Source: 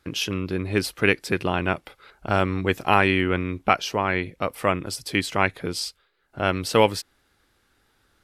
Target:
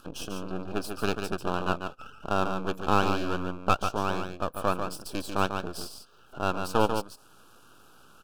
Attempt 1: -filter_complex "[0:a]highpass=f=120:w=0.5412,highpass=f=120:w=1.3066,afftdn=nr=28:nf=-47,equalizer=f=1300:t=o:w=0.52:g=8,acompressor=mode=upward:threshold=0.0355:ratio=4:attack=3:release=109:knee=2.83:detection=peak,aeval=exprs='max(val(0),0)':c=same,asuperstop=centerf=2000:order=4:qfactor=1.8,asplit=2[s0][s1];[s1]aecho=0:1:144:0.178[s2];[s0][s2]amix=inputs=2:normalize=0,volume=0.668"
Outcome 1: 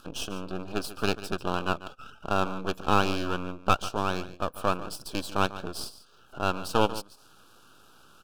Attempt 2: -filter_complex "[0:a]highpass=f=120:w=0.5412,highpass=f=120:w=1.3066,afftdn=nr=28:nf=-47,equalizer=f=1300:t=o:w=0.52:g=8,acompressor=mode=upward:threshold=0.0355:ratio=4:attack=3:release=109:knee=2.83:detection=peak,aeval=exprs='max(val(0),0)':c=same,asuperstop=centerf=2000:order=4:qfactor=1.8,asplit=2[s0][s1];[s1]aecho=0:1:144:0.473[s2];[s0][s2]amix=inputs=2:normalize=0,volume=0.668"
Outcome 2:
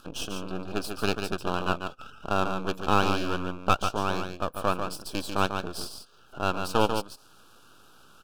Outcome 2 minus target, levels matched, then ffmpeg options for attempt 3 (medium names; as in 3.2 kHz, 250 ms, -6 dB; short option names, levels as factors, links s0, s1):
4 kHz band +3.0 dB
-filter_complex "[0:a]highpass=f=120:w=0.5412,highpass=f=120:w=1.3066,equalizer=f=3300:t=o:w=1.3:g=-6,afftdn=nr=28:nf=-47,equalizer=f=1300:t=o:w=0.52:g=8,acompressor=mode=upward:threshold=0.0355:ratio=4:attack=3:release=109:knee=2.83:detection=peak,aeval=exprs='max(val(0),0)':c=same,asuperstop=centerf=2000:order=4:qfactor=1.8,asplit=2[s0][s1];[s1]aecho=0:1:144:0.473[s2];[s0][s2]amix=inputs=2:normalize=0,volume=0.668"